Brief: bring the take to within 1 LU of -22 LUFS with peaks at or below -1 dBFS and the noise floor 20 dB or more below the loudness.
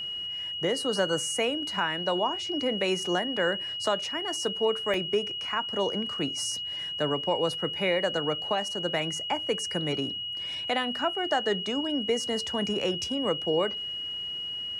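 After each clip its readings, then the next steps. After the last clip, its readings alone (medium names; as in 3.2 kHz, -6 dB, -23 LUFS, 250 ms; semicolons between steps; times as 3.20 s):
dropouts 1; longest dropout 1.4 ms; steady tone 2.9 kHz; tone level -32 dBFS; loudness -28.5 LUFS; peak level -14.5 dBFS; loudness target -22.0 LUFS
-> interpolate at 4.94 s, 1.4 ms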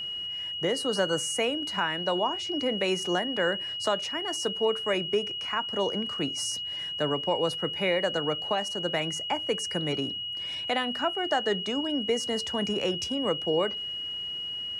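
dropouts 0; steady tone 2.9 kHz; tone level -32 dBFS
-> band-stop 2.9 kHz, Q 30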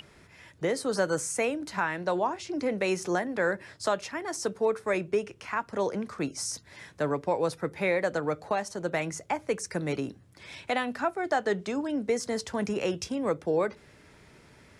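steady tone not found; loudness -30.5 LUFS; peak level -15.0 dBFS; loudness target -22.0 LUFS
-> trim +8.5 dB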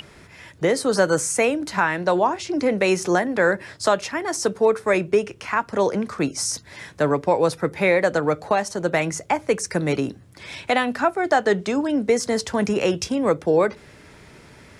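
loudness -22.0 LUFS; peak level -6.5 dBFS; noise floor -48 dBFS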